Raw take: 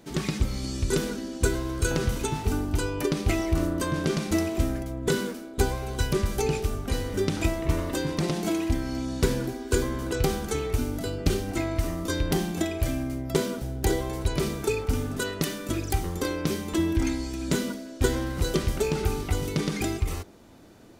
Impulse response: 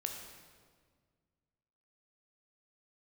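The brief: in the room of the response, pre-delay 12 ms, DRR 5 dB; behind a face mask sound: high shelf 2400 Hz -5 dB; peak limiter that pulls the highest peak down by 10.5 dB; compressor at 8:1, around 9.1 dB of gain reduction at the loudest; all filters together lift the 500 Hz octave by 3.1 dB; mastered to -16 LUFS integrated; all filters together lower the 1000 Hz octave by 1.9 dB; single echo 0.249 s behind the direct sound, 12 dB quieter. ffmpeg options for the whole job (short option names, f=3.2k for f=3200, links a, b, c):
-filter_complex "[0:a]equalizer=f=500:t=o:g=5,equalizer=f=1k:t=o:g=-3.5,acompressor=threshold=-27dB:ratio=8,alimiter=limit=-23dB:level=0:latency=1,aecho=1:1:249:0.251,asplit=2[a][b];[1:a]atrim=start_sample=2205,adelay=12[c];[b][c]afir=irnorm=-1:irlink=0,volume=-5dB[d];[a][d]amix=inputs=2:normalize=0,highshelf=f=2.4k:g=-5,volume=16.5dB"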